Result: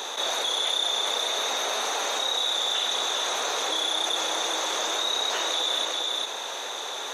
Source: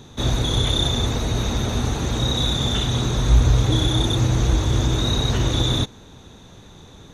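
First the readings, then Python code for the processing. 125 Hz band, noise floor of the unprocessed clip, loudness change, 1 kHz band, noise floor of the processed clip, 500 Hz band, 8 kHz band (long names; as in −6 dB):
below −40 dB, −45 dBFS, −4.5 dB, +2.0 dB, −34 dBFS, −3.5 dB, +2.0 dB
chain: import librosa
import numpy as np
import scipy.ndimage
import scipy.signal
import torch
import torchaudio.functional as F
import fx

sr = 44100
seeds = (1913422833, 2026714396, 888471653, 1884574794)

p1 = scipy.signal.sosfilt(scipy.signal.butter(4, 550.0, 'highpass', fs=sr, output='sos'), x)
p2 = p1 + fx.echo_single(p1, sr, ms=402, db=-7.0, dry=0)
p3 = fx.env_flatten(p2, sr, amount_pct=70)
y = p3 * 10.0 ** (-3.5 / 20.0)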